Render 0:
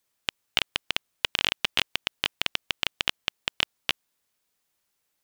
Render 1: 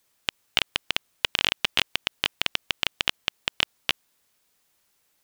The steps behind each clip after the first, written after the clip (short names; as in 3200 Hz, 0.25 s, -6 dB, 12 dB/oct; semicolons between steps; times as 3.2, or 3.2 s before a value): limiter -9.5 dBFS, peak gain reduction 6 dB; gain +7.5 dB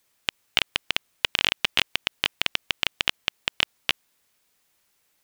bell 2200 Hz +2 dB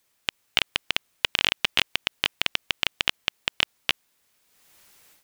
AGC gain up to 14.5 dB; gain -1 dB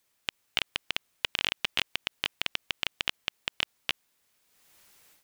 limiter -4.5 dBFS, peak gain reduction 3 dB; gain -3.5 dB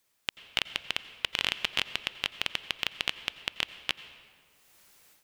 reverb RT60 2.0 s, pre-delay 81 ms, DRR 13.5 dB